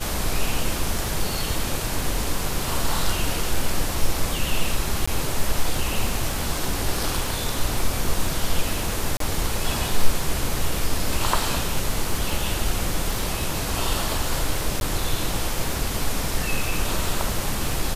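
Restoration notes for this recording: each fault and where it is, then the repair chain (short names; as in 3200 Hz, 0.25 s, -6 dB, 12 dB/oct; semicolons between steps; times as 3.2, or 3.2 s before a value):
crackle 29/s -28 dBFS
5.06–5.08 gap 15 ms
9.17–9.2 gap 33 ms
14.8–14.81 gap 11 ms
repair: de-click; interpolate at 5.06, 15 ms; interpolate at 9.17, 33 ms; interpolate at 14.8, 11 ms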